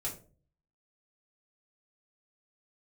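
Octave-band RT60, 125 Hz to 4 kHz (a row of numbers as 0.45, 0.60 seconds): 0.75, 0.55, 0.45, 0.35, 0.25, 0.25 seconds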